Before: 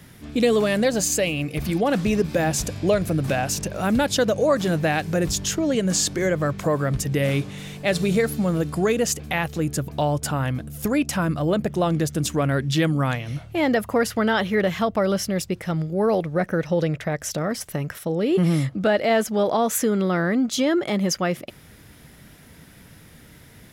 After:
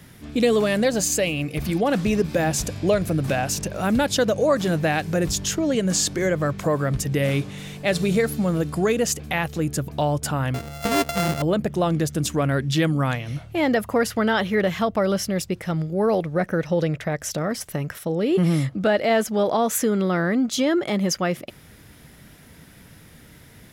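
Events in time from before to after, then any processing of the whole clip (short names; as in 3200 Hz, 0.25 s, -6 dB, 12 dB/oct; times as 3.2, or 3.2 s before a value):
10.54–11.42 sample sorter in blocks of 64 samples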